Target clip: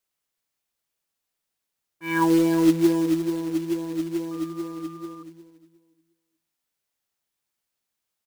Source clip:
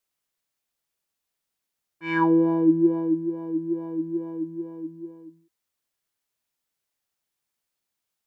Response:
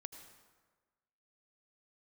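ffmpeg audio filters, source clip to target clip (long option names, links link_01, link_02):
-filter_complex "[0:a]aecho=1:1:358|716|1074:0.251|0.0653|0.017,acrusher=bits=4:mode=log:mix=0:aa=0.000001,asettb=1/sr,asplit=3[link_01][link_02][link_03];[link_01]atrim=end=4.314[link_04];[link_02]atrim=start=4.31:end=5.23,asetpts=PTS-STARTPTS,afade=type=in:duration=0.004:curve=qsin,afade=type=out:start_time=0.916:duration=0.004:curve=qsin,aeval=exprs='val(0)+0.00631*sin(2*PI*1200*n/s)':channel_layout=same[link_05];[link_03]atrim=start=5.226[link_06];[link_04][link_05]acrossfade=duration=0.004:curve1=hsin:curve2=qsin[link_07];[link_07][link_06]acrossfade=duration=0.004:curve1=qsin:curve2=hsin"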